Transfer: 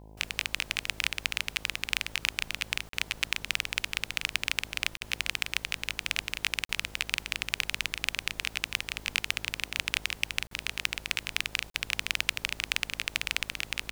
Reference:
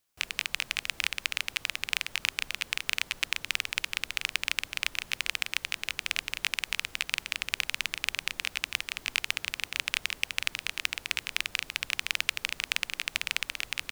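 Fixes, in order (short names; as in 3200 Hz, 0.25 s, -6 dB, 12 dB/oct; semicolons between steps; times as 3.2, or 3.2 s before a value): de-hum 52.9 Hz, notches 19; interpolate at 2.89/4.97/6.65/10.47/11.7, 43 ms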